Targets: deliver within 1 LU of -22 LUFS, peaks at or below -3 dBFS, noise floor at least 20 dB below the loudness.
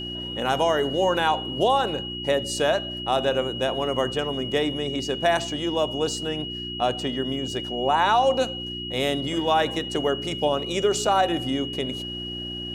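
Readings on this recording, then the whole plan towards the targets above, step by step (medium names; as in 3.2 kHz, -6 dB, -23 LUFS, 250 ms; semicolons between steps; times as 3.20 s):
hum 60 Hz; highest harmonic 360 Hz; hum level -34 dBFS; steady tone 2.9 kHz; tone level -32 dBFS; loudness -24.5 LUFS; peak level -8.5 dBFS; loudness target -22.0 LUFS
-> de-hum 60 Hz, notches 6; band-stop 2.9 kHz, Q 30; trim +2.5 dB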